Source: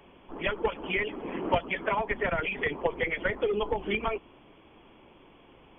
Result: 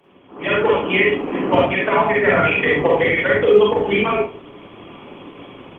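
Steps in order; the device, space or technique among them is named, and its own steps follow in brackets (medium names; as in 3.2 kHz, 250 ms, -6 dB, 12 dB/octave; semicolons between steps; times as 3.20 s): far-field microphone of a smart speaker (reverberation RT60 0.40 s, pre-delay 39 ms, DRR -4 dB; high-pass 93 Hz 24 dB/octave; level rider gain up to 14 dB; trim -1 dB; Opus 20 kbps 48 kHz)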